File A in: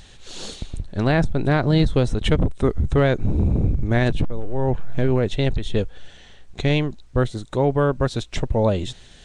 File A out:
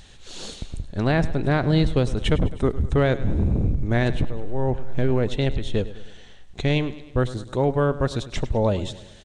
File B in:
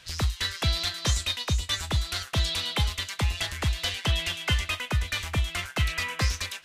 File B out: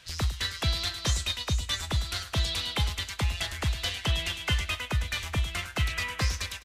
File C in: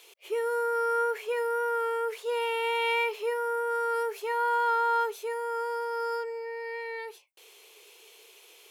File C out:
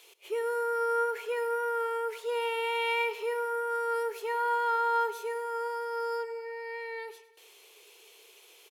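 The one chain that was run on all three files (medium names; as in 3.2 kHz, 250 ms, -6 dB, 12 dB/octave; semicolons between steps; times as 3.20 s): feedback delay 103 ms, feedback 54%, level -16 dB; trim -2 dB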